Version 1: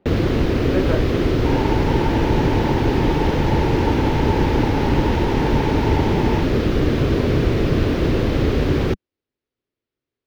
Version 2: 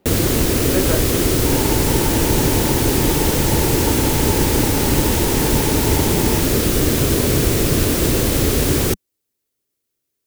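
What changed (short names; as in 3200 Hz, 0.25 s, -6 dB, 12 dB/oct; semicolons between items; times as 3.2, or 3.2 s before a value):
second sound -3.5 dB; master: remove air absorption 290 m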